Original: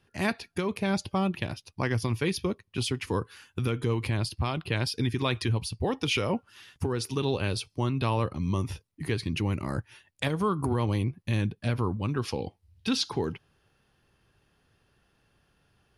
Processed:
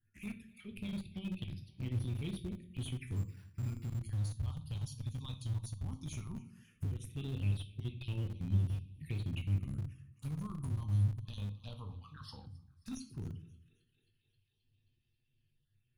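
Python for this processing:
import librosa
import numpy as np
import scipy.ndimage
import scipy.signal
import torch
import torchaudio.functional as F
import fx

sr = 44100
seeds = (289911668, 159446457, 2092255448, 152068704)

p1 = fx.spec_dropout(x, sr, seeds[0], share_pct=24)
p2 = fx.env_flanger(p1, sr, rest_ms=8.8, full_db=-28.0)
p3 = fx.tone_stack(p2, sr, knobs='6-0-2')
p4 = p3 + fx.echo_thinned(p3, sr, ms=266, feedback_pct=64, hz=310.0, wet_db=-21.5, dry=0)
p5 = fx.phaser_stages(p4, sr, stages=4, low_hz=350.0, high_hz=1300.0, hz=0.15, feedback_pct=15)
p6 = fx.room_shoebox(p5, sr, seeds[1], volume_m3=55.0, walls='mixed', distance_m=0.42)
p7 = fx.resample_bad(p6, sr, factor=6, down='none', up='hold', at=(3.16, 3.99))
p8 = fx.graphic_eq(p7, sr, hz=(125, 500, 1000, 2000, 4000, 8000), db=(-11, 8, 5, 5, 8, -11), at=(11.25, 12.46))
p9 = fx.schmitt(p8, sr, flips_db=-42.5)
p10 = p8 + F.gain(torch.from_numpy(p9), -11.0).numpy()
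y = F.gain(torch.from_numpy(p10), 5.5).numpy()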